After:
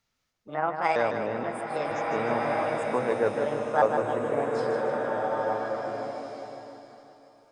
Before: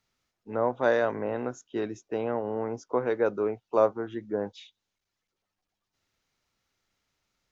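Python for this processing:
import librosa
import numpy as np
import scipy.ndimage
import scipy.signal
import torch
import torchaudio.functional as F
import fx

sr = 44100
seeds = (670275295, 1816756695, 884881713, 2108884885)

y = fx.pitch_trill(x, sr, semitones=5.5, every_ms=477)
y = fx.peak_eq(y, sr, hz=370.0, db=-4.5, octaves=0.34)
y = fx.echo_feedback(y, sr, ms=153, feedback_pct=51, wet_db=-7.0)
y = fx.rev_bloom(y, sr, seeds[0], attack_ms=1690, drr_db=0.5)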